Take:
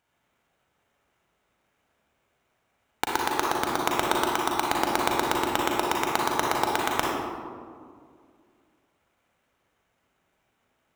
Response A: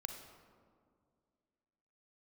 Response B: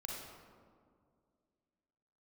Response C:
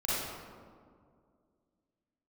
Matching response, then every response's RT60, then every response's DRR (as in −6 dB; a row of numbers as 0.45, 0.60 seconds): B; 2.2, 2.1, 2.1 seconds; 5.0, −2.5, −9.5 decibels